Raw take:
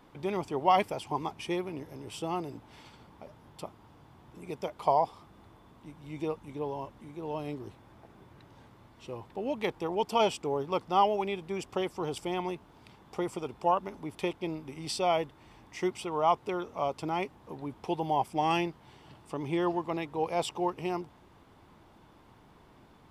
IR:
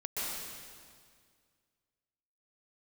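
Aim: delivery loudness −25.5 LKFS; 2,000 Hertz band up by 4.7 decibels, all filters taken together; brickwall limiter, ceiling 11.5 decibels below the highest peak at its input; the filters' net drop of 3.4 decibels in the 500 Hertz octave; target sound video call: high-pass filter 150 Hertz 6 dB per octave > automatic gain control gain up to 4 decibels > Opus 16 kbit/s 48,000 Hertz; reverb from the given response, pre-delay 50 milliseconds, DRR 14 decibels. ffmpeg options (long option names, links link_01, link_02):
-filter_complex "[0:a]equalizer=frequency=500:width_type=o:gain=-4.5,equalizer=frequency=2000:width_type=o:gain=6,alimiter=limit=-23dB:level=0:latency=1,asplit=2[link_01][link_02];[1:a]atrim=start_sample=2205,adelay=50[link_03];[link_02][link_03]afir=irnorm=-1:irlink=0,volume=-19dB[link_04];[link_01][link_04]amix=inputs=2:normalize=0,highpass=frequency=150:poles=1,dynaudnorm=maxgain=4dB,volume=10dB" -ar 48000 -c:a libopus -b:a 16k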